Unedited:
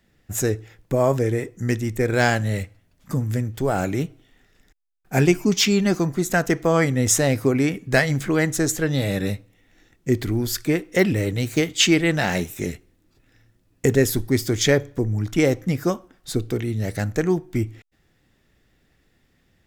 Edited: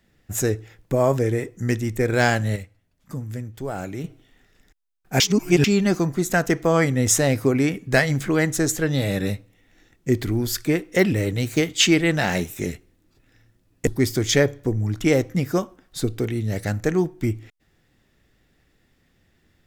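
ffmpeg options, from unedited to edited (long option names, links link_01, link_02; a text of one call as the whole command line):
ffmpeg -i in.wav -filter_complex "[0:a]asplit=6[link_01][link_02][link_03][link_04][link_05][link_06];[link_01]atrim=end=2.562[link_07];[link_02]atrim=start=2.558:end=4.042,asetpts=PTS-STARTPTS,volume=-7.5dB[link_08];[link_03]atrim=start=4.038:end=5.202[link_09];[link_04]atrim=start=5.198:end=5.642,asetpts=PTS-STARTPTS,areverse[link_10];[link_05]atrim=start=5.638:end=13.872[link_11];[link_06]atrim=start=14.188[link_12];[link_07][link_08]acrossfade=duration=0.004:curve1=hsin:curve2=hsin[link_13];[link_13][link_09]acrossfade=duration=0.004:curve1=hsin:curve2=hsin[link_14];[link_14][link_10]acrossfade=duration=0.004:curve1=hsin:curve2=hsin[link_15];[link_15][link_11]acrossfade=duration=0.004:curve1=hsin:curve2=hsin[link_16];[link_16][link_12]acrossfade=duration=0.004:curve1=hsin:curve2=hsin" out.wav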